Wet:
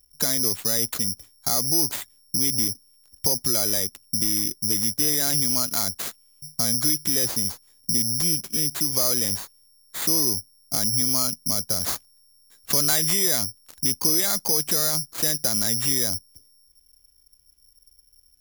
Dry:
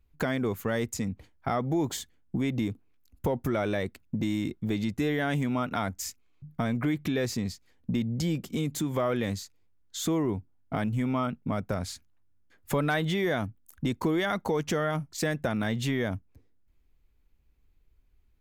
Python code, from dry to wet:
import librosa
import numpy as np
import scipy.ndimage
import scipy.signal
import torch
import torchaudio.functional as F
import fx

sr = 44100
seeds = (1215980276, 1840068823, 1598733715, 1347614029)

y = fx.peak_eq(x, sr, hz=6000.0, db=11.5, octaves=0.98, at=(11.79, 13.85))
y = (np.kron(y[::8], np.eye(8)[0]) * 8)[:len(y)]
y = y * librosa.db_to_amplitude(-3.5)